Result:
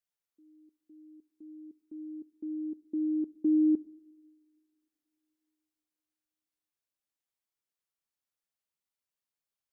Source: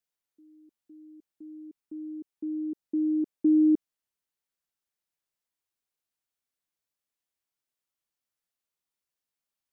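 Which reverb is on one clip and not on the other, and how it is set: two-slope reverb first 0.93 s, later 3.3 s, from -21 dB, DRR 16.5 dB; trim -4.5 dB

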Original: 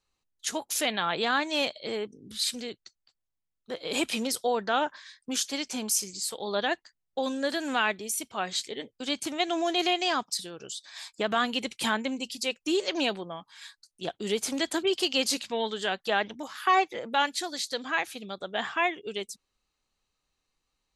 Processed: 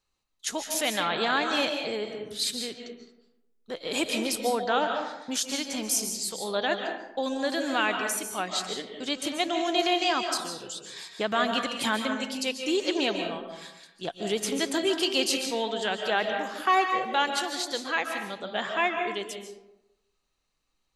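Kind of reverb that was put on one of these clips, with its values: algorithmic reverb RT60 0.93 s, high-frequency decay 0.5×, pre-delay 105 ms, DRR 4 dB

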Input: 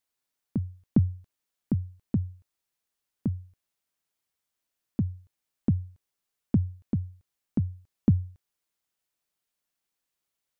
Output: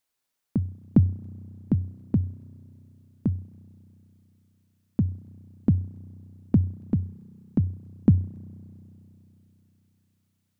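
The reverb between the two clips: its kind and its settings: spring tank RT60 3.6 s, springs 32 ms, chirp 40 ms, DRR 18.5 dB; trim +3.5 dB

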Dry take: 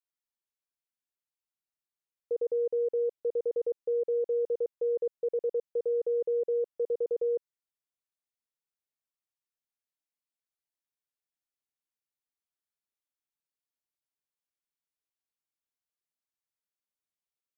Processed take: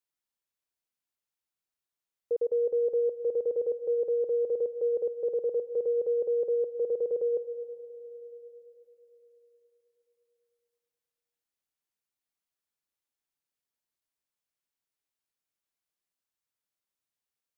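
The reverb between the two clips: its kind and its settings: algorithmic reverb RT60 4 s, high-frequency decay 0.85×, pre-delay 110 ms, DRR 14 dB; trim +2 dB

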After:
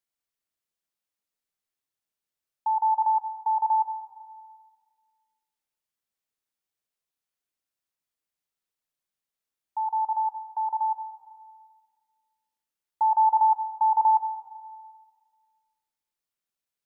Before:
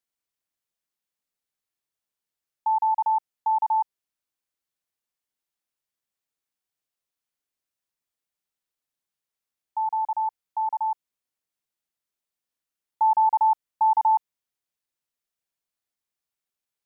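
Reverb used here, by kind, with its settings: algorithmic reverb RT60 1.7 s, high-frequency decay 0.75×, pre-delay 30 ms, DRR 8 dB; trim -2 dB

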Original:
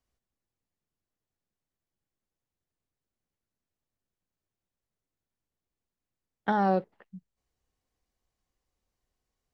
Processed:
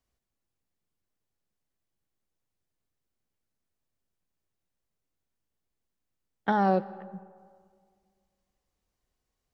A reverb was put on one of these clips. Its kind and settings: algorithmic reverb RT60 2 s, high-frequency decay 0.45×, pre-delay 80 ms, DRR 18.5 dB; trim +1 dB

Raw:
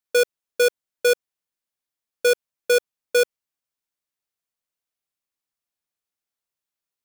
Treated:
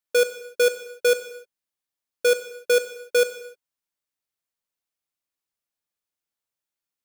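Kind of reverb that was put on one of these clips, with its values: gated-style reverb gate 330 ms falling, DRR 9.5 dB; trim -1.5 dB

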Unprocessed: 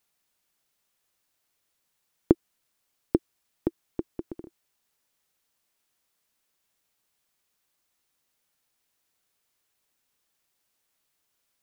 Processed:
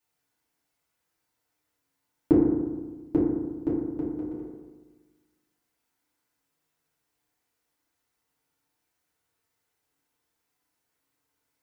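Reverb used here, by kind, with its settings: FDN reverb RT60 1.3 s, low-frequency decay 1.2×, high-frequency decay 0.25×, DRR -9.5 dB; trim -9.5 dB

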